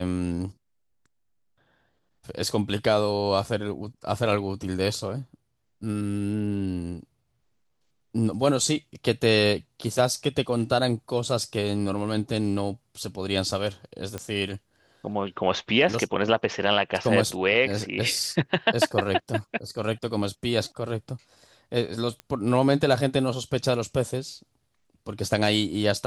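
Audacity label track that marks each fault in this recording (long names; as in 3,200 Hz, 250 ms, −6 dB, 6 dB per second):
14.180000	14.180000	click −18 dBFS
22.200000	22.200000	click −23 dBFS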